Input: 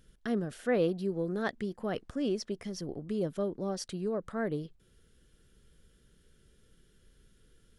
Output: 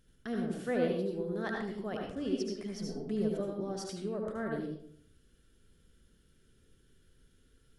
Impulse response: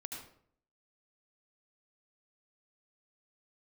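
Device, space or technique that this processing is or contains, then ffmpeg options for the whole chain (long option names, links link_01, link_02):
bathroom: -filter_complex "[1:a]atrim=start_sample=2205[link_01];[0:a][link_01]afir=irnorm=-1:irlink=0,asettb=1/sr,asplit=3[link_02][link_03][link_04];[link_02]atrim=end=2.794[link_05];[link_03]atrim=start=2.79:end=3.41,asetpts=PTS-STARTPTS,afade=type=in:duration=0.004:curve=qsin,afade=type=out:start_time=0.616:duration=0.004:curve=qsin,aecho=1:1:4.6:0.69,atrim=end_sample=27342[link_06];[link_04]atrim=start=3.406[link_07];[link_05][link_06]acrossfade=duration=0.004:curve1=hsin:curve2=qsin[link_08];[link_08][link_07]acrossfade=duration=0.004:curve1=qsin:curve2=hsin"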